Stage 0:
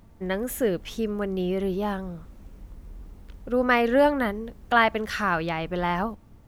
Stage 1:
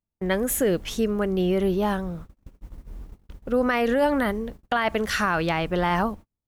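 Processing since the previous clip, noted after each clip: gate -41 dBFS, range -41 dB; dynamic EQ 8600 Hz, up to +6 dB, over -50 dBFS, Q 0.81; limiter -17 dBFS, peak gain reduction 11 dB; gain +4 dB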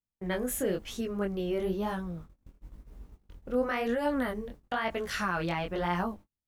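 chorus 1 Hz, delay 16.5 ms, depth 7.8 ms; gain -5 dB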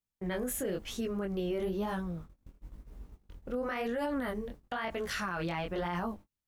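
limiter -26 dBFS, peak gain reduction 8 dB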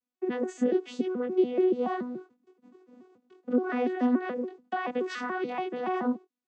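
arpeggiated vocoder bare fifth, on B3, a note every 0.143 s; gain +7 dB

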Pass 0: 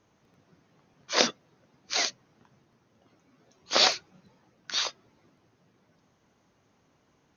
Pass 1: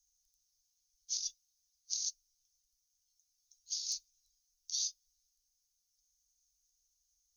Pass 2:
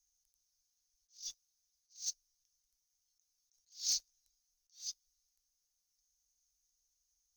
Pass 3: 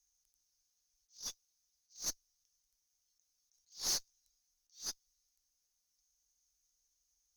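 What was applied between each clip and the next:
inverse Chebyshev band-stop 190–1200 Hz, stop band 80 dB; high shelf 7000 Hz +6 dB; negative-ratio compressor -36 dBFS, ratio -1; gain -1 dB
limiter -27.5 dBFS, peak gain reduction 11 dB; sample leveller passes 2; attack slew limiter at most 200 dB/s; gain +1.5 dB
tube stage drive 36 dB, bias 0.75; gain +5.5 dB

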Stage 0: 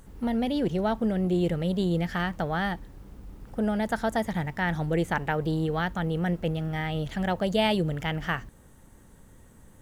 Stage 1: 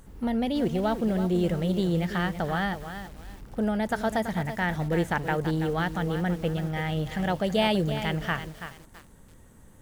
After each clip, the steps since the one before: lo-fi delay 0.331 s, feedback 35%, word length 7-bit, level -9.5 dB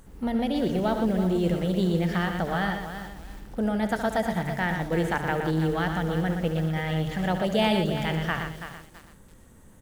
notches 50/100/150 Hz; on a send: loudspeakers at several distances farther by 24 m -11 dB, 41 m -7 dB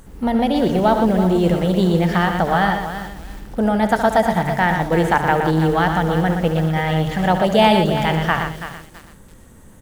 dynamic EQ 890 Hz, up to +6 dB, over -41 dBFS, Q 1.5; gain +7.5 dB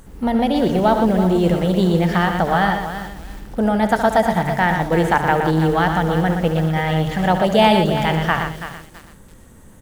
nothing audible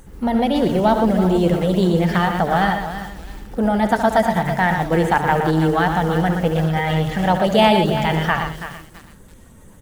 bin magnitudes rounded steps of 15 dB

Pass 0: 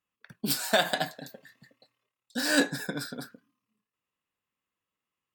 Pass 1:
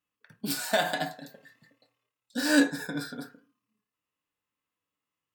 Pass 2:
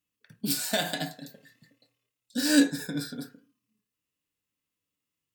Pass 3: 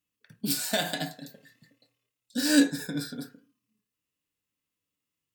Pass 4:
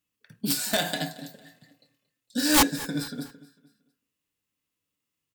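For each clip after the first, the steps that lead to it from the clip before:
harmonic-percussive split percussive -7 dB; FDN reverb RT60 0.34 s, low-frequency decay 0.75×, high-frequency decay 0.35×, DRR 6.5 dB; gain +1.5 dB
bell 1000 Hz -12 dB 2.1 oct; gain +4.5 dB
nothing audible
wrapped overs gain 14.5 dB; feedback echo 0.227 s, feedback 41%, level -20 dB; gain +2 dB

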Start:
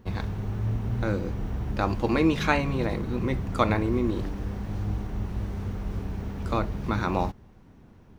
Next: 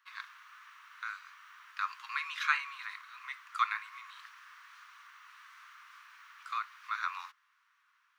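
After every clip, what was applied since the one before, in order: steep high-pass 1100 Hz 72 dB/oct; high shelf 3500 Hz -10 dB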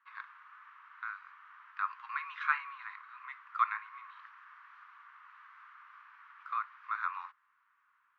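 LPF 1400 Hz 12 dB/oct; gain +3 dB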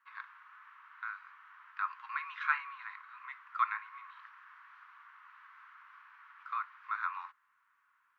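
notch 1200 Hz, Q 24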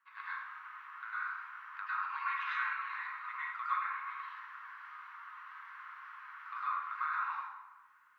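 compressor 3:1, threshold -39 dBFS, peak gain reduction 11.5 dB; plate-style reverb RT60 1.1 s, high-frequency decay 0.6×, pre-delay 90 ms, DRR -10 dB; gain -3.5 dB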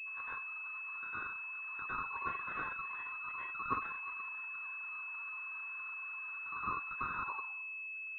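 reverb removal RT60 1 s; pulse-width modulation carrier 2600 Hz; gain +2.5 dB

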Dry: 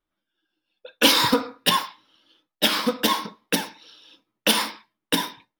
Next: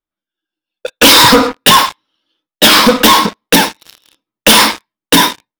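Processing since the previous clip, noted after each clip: sample leveller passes 5; gain +3.5 dB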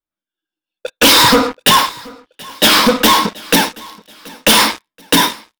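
feedback echo 0.729 s, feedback 37%, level -23 dB; gain -3.5 dB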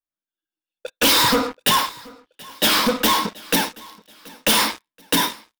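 high shelf 12000 Hz +5 dB; gain -8 dB

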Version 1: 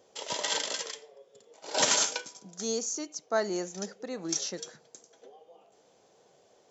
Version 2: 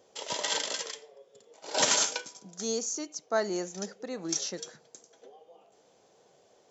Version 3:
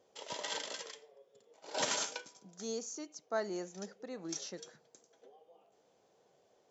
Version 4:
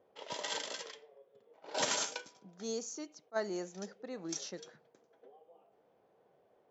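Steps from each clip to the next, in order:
nothing audible
high shelf 5100 Hz -6.5 dB; gain -7 dB
low-pass opened by the level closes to 1900 Hz, open at -35.5 dBFS; attack slew limiter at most 570 dB/s; gain +1 dB

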